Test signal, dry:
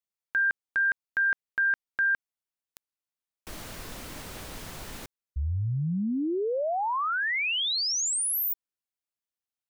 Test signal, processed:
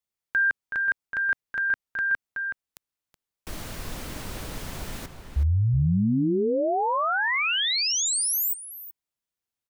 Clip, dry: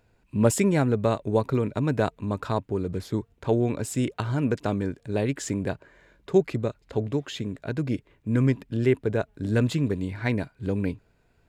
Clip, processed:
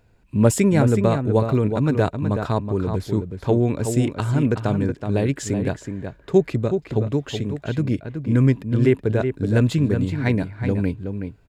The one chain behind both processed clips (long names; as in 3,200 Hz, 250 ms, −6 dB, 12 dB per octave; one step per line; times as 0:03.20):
low-shelf EQ 210 Hz +5 dB
slap from a distant wall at 64 metres, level −7 dB
level +2.5 dB